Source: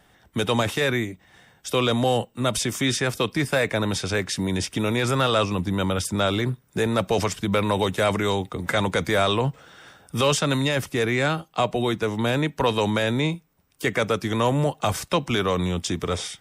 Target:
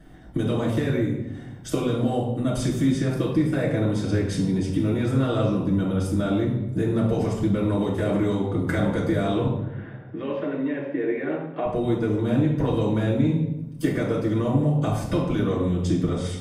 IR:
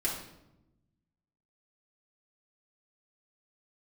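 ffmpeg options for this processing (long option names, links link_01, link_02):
-filter_complex "[0:a]tiltshelf=frequency=660:gain=8,acompressor=threshold=-28dB:ratio=5,asettb=1/sr,asplit=3[link_01][link_02][link_03];[link_01]atrim=end=9.474[link_04];[link_02]atrim=start=9.47:end=11.66,asetpts=PTS-STARTPTS,afade=type=in:duration=0.004:curve=qsin,afade=type=out:start_time=2.186:duration=0.004:curve=qsin,highpass=frequency=240:width=0.5412,highpass=frequency=240:width=1.3066,equalizer=frequency=240:width_type=q:width=4:gain=-7,equalizer=frequency=760:width_type=q:width=4:gain=-3,equalizer=frequency=1300:width_type=q:width=4:gain=-7,equalizer=frequency=1800:width_type=q:width=4:gain=3,lowpass=frequency=2500:width=0.5412,lowpass=frequency=2500:width=1.3066[link_05];[link_03]atrim=start=11.656[link_06];[link_04][link_05]acrossfade=duration=0.004:curve1=hsin:curve2=qsin[link_07];[link_07][link_06]acrossfade=duration=0.004:curve1=qsin:curve2=hsin[link_08];[1:a]atrim=start_sample=2205,asetrate=39690,aresample=44100[link_09];[link_08][link_09]afir=irnorm=-1:irlink=0"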